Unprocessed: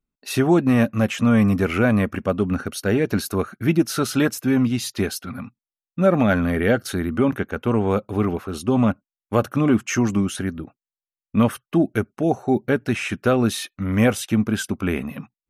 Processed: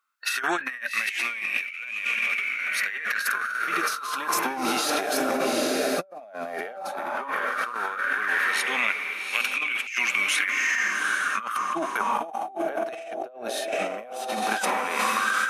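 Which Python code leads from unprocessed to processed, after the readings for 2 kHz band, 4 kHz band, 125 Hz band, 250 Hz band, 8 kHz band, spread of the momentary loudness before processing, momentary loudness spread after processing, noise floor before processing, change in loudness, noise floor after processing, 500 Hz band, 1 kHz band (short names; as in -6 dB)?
+6.0 dB, +2.5 dB, -30.5 dB, -17.0 dB, +0.5 dB, 8 LU, 9 LU, under -85 dBFS, -4.5 dB, -40 dBFS, -8.5 dB, +2.5 dB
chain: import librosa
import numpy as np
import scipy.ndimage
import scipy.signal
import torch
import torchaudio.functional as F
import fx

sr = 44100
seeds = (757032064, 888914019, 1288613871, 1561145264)

p1 = fx.hpss(x, sr, part='percussive', gain_db=-10)
p2 = scipy.signal.sosfilt(scipy.signal.butter(4, 150.0, 'highpass', fs=sr, output='sos'), p1)
p3 = p2 + fx.echo_diffused(p2, sr, ms=819, feedback_pct=41, wet_db=-6.0, dry=0)
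p4 = fx.filter_lfo_highpass(p3, sr, shape='sine', hz=0.13, low_hz=630.0, high_hz=2400.0, q=7.3)
p5 = fx.over_compress(p4, sr, threshold_db=-36.0, ratio=-1.0)
y = F.gain(torch.from_numpy(p5), 5.0).numpy()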